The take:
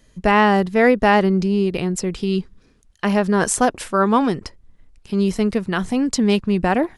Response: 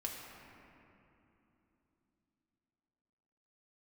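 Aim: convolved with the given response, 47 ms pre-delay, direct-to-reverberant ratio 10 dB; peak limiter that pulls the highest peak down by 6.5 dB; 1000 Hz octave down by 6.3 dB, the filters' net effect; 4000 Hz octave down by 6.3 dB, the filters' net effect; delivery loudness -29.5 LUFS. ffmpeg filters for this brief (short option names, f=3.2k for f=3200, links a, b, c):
-filter_complex "[0:a]equalizer=f=1k:t=o:g=-8,equalizer=f=4k:t=o:g=-9,alimiter=limit=-12dB:level=0:latency=1,asplit=2[a][b];[1:a]atrim=start_sample=2205,adelay=47[c];[b][c]afir=irnorm=-1:irlink=0,volume=-10.5dB[d];[a][d]amix=inputs=2:normalize=0,volume=-7.5dB"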